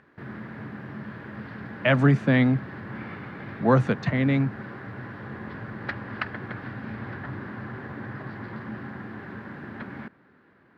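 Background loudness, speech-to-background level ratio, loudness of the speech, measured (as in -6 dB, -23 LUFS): -37.5 LUFS, 14.5 dB, -23.0 LUFS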